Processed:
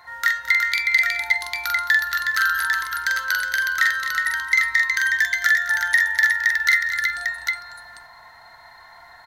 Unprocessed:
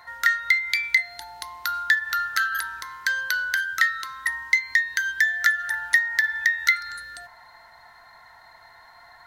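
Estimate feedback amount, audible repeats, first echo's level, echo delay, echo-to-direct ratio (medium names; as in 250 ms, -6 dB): no regular repeats, 6, -3.0 dB, 44 ms, 1.5 dB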